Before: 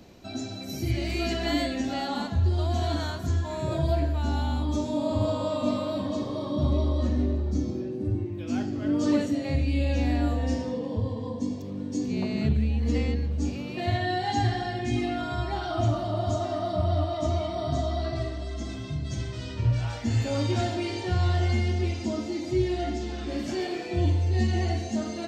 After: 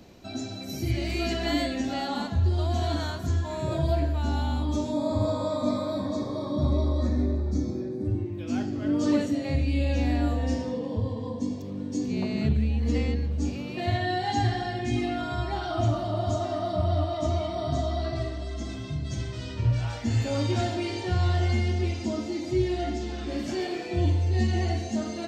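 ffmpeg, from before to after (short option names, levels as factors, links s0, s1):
-filter_complex "[0:a]asettb=1/sr,asplit=3[s0][s1][s2];[s0]atrim=end=4.924[s3];[s1]atrim=start=4.92:end=8.06,asetpts=PTS-STARTPTS,afade=t=in:d=0.004:c=qsin,afade=t=out:st=3.136:d=0.004:c=qsin,asuperstop=centerf=2900:order=8:qfactor=3.3[s4];[s2]atrim=start=8.056[s5];[s3][s4]acrossfade=d=0.004:c1=hsin:c2=qsin[s6];[s6][s5]acrossfade=d=0.004:c1=qsin:c2=hsin"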